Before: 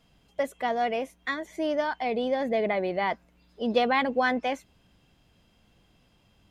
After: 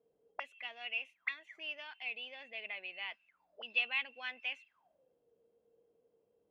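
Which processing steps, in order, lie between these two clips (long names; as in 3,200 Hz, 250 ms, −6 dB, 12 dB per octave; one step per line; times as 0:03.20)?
envelope filter 430–2,700 Hz, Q 21, up, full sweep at −31 dBFS
level +11 dB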